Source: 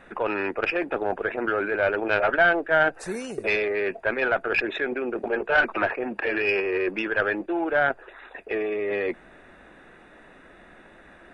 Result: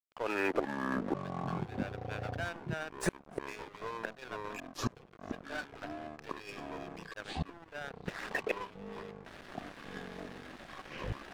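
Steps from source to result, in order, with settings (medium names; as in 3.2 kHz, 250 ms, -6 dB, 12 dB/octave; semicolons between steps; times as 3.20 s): fade-in on the opening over 1.39 s; inverted gate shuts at -24 dBFS, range -25 dB; crossover distortion -49.5 dBFS; ever faster or slower copies 245 ms, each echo -7 st, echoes 3; trim +7.5 dB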